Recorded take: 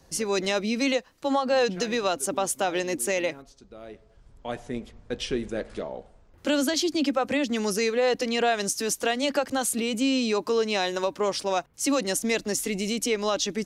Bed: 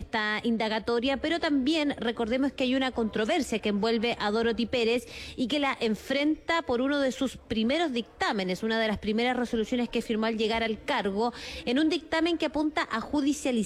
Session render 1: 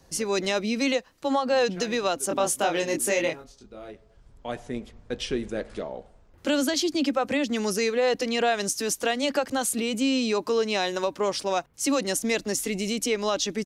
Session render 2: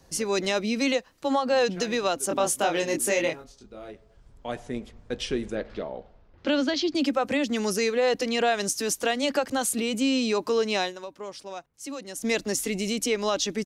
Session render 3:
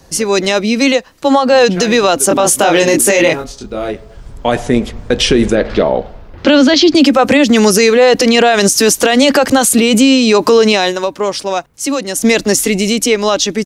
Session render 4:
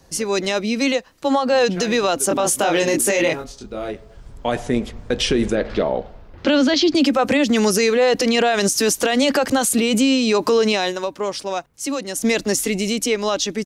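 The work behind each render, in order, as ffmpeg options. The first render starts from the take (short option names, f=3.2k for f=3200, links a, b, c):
-filter_complex "[0:a]asplit=3[a][b][c];[a]afade=t=out:st=2.29:d=0.02[d];[b]asplit=2[e][f];[f]adelay=24,volume=-2.5dB[g];[e][g]amix=inputs=2:normalize=0,afade=t=in:st=2.29:d=0.02,afade=t=out:st=3.9:d=0.02[h];[c]afade=t=in:st=3.9:d=0.02[i];[d][h][i]amix=inputs=3:normalize=0"
-filter_complex "[0:a]asettb=1/sr,asplit=3[a][b][c];[a]atrim=end=5.554[d];[b]atrim=start=5.55:end=6.95,asetpts=PTS-STARTPTS,afade=t=in:d=0.004:c=qsin,afade=t=out:st=1.396:d=0.004:c=qsin,lowpass=f=4.9k:w=0.5412,lowpass=f=4.9k:w=1.3066[e];[c]atrim=start=6.946[f];[d][e]acrossfade=d=0.004:c1=hsin:c2=qsin[g];[g][f]acrossfade=d=0.004:c1=qsin:c2=hsin,asplit=3[h][i][j];[h]atrim=end=10.94,asetpts=PTS-STARTPTS,afade=t=out:st=10.82:d=0.12:silence=0.251189[k];[i]atrim=start=10.94:end=12.15,asetpts=PTS-STARTPTS,volume=-12dB[l];[j]atrim=start=12.15,asetpts=PTS-STARTPTS,afade=t=in:d=0.12:silence=0.251189[m];[k][l][m]concat=n=3:v=0:a=1"
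-af "dynaudnorm=f=230:g=17:m=11dB,alimiter=level_in=13dB:limit=-1dB:release=50:level=0:latency=1"
-af "volume=-8dB"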